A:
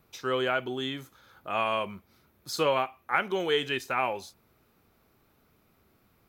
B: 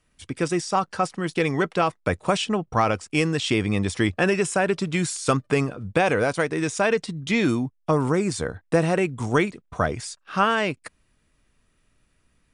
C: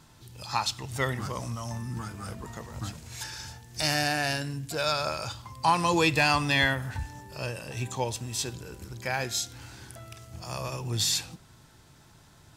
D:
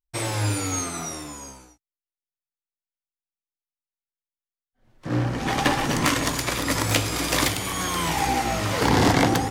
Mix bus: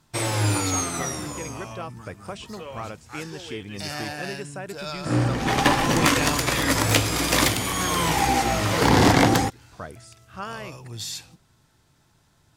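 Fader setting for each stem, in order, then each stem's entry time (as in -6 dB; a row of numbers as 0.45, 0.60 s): -13.5, -14.0, -6.5, +2.0 dB; 0.00, 0.00, 0.00, 0.00 s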